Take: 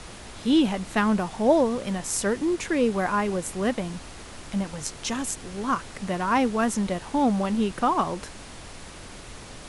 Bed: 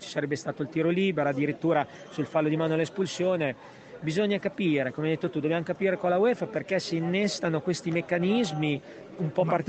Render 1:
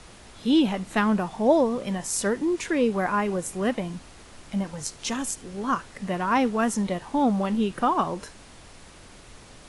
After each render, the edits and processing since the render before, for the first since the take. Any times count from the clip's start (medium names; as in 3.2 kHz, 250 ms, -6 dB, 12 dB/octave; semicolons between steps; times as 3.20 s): noise print and reduce 6 dB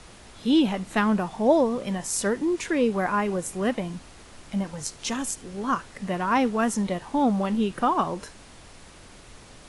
no audible change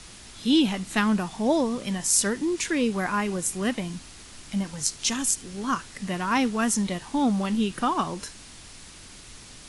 FFT filter 290 Hz 0 dB, 540 Hz -6 dB, 5.1 kHz +7 dB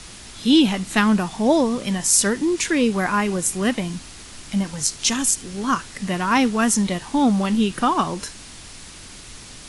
trim +5.5 dB; peak limiter -1 dBFS, peak gain reduction 2 dB